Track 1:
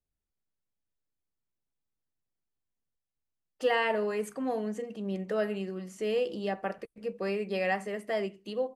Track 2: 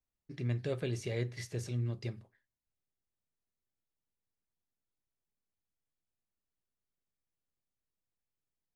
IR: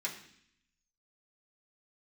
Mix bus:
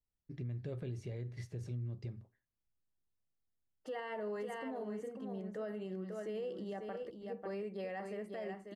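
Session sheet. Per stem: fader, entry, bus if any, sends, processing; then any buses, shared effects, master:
−6.5 dB, 0.25 s, no send, echo send −7.5 dB, notch filter 2,500 Hz, Q 9.1
−6.0 dB, 0.00 s, no send, no echo send, low-shelf EQ 270 Hz +8.5 dB; downward compressor, threshold −28 dBFS, peak gain reduction 6 dB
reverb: not used
echo: single-tap delay 543 ms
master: high-shelf EQ 2,100 Hz −8 dB; brickwall limiter −34 dBFS, peak gain reduction 9.5 dB

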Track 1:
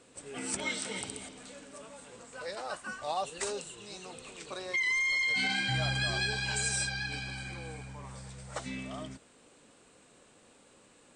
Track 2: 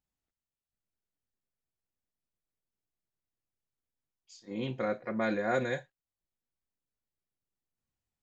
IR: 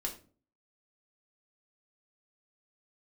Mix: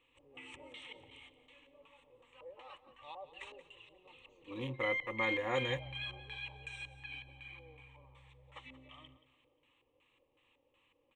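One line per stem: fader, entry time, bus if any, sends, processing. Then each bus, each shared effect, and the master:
−10.0 dB, 0.00 s, no send, echo send −15 dB, auto-filter low-pass square 2.7 Hz 580–3,100 Hz
+3.0 dB, 0.00 s, no send, no echo send, adaptive Wiener filter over 25 samples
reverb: not used
echo: repeating echo 178 ms, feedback 38%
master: parametric band 410 Hz −15 dB 0.39 octaves; phaser with its sweep stopped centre 1,000 Hz, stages 8

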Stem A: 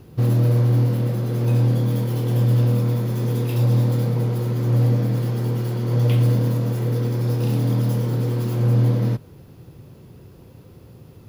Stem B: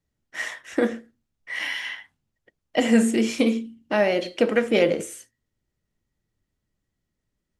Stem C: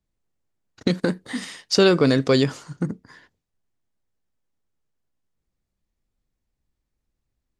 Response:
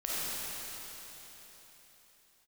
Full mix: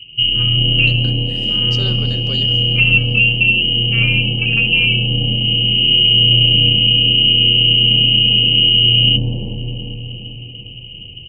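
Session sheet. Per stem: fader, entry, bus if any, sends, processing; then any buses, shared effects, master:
−5.0 dB, 0.00 s, bus A, send −13 dB, echo send −4 dB, sub-octave generator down 2 octaves, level −4 dB; elliptic low-pass filter 870 Hz, stop band 40 dB; parametric band 96 Hz +11 dB 2.9 octaves; automatic ducking −10 dB, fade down 0.35 s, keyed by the second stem
−2.5 dB, 0.00 s, bus A, no send, no echo send, vocoder with an arpeggio as carrier major triad, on A#3, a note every 212 ms; spectral tilt −3.5 dB per octave
−16.0 dB, 0.00 s, no bus, send −22 dB, no echo send, no processing
bus A: 0.0 dB, voice inversion scrambler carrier 3,000 Hz; brickwall limiter −8.5 dBFS, peak gain reduction 7.5 dB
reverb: on, RT60 4.0 s, pre-delay 10 ms
echo: repeating echo 395 ms, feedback 50%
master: parametric band 3,900 Hz +7 dB 1 octave

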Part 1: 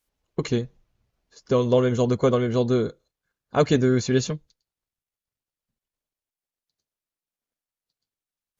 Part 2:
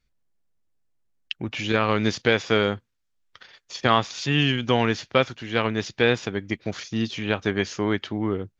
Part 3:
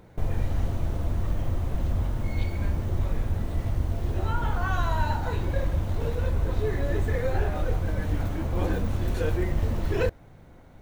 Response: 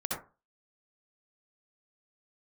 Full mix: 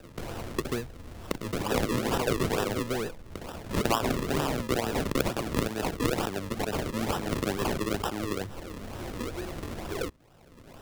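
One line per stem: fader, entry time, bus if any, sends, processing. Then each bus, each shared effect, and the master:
−3.5 dB, 0.20 s, no send, downward compressor, threshold −20 dBFS, peak gain reduction 7 dB
−4.5 dB, 0.00 s, no send, level that may fall only so fast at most 35 dB per second
−11.5 dB, 0.00 s, no send, automatic ducking −7 dB, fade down 0.85 s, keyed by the second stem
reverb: not used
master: low-shelf EQ 300 Hz −12 dB; sample-and-hold swept by an LFO 40×, swing 100% 2.2 Hz; multiband upward and downward compressor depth 70%

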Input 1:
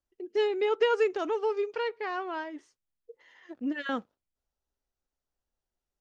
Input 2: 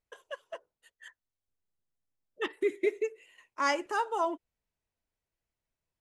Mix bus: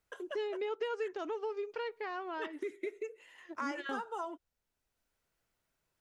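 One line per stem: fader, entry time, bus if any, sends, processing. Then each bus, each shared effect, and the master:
−3.0 dB, 0.00 s, no send, no processing
−5.0 dB, 0.00 s, no send, parametric band 1,400 Hz +7 dB 0.32 octaves; multiband upward and downward compressor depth 40%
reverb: not used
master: downward compressor 2.5 to 1, threshold −37 dBFS, peak gain reduction 10 dB

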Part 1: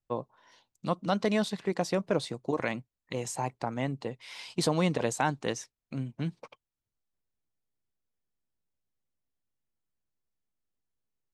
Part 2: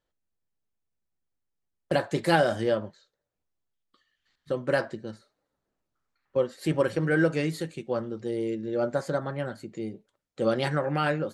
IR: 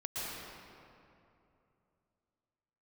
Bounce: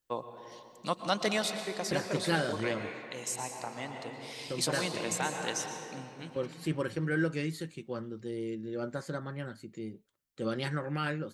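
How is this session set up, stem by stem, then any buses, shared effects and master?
−1.5 dB, 0.00 s, send −9.5 dB, spectral tilt +3 dB per octave; automatic ducking −8 dB, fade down 0.65 s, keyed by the second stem
−4.5 dB, 0.00 s, no send, parametric band 670 Hz −9 dB 1 octave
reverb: on, RT60 2.8 s, pre-delay 108 ms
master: no processing

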